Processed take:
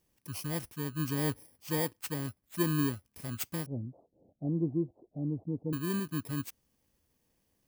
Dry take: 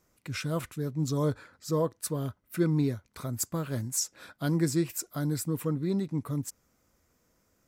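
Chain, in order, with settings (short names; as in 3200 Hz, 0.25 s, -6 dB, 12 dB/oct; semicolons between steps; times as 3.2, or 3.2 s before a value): FFT order left unsorted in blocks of 32 samples; 3.66–5.73 steep low-pass 720 Hz 48 dB/oct; dynamic EQ 280 Hz, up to +4 dB, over -40 dBFS, Q 1.9; gain -5 dB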